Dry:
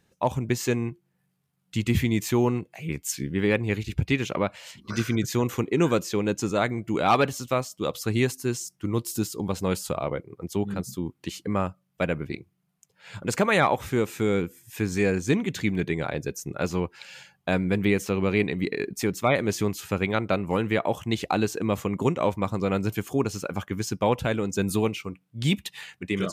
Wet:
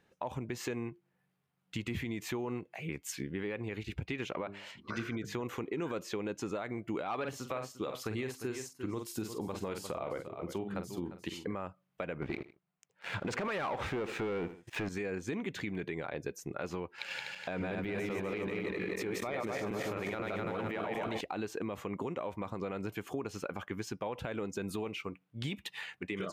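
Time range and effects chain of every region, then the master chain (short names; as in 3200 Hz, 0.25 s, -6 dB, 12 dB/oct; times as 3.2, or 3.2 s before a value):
4.41–5.41 high shelf 5200 Hz -6.5 dB + notches 50/100/150/200/250/300/350/400/450 Hz
7.15–11.55 doubler 46 ms -9.5 dB + echo 0.35 s -15.5 dB
12.22–14.89 Bessel low-pass 4700 Hz + sample leveller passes 3 + feedback echo 78 ms, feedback 27%, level -21 dB
16.98–21.21 regenerating reverse delay 0.124 s, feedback 67%, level -3 dB + sample leveller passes 1 + negative-ratio compressor -24 dBFS
whole clip: tone controls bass -8 dB, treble -11 dB; limiter -21 dBFS; compressor 2.5:1, threshold -36 dBFS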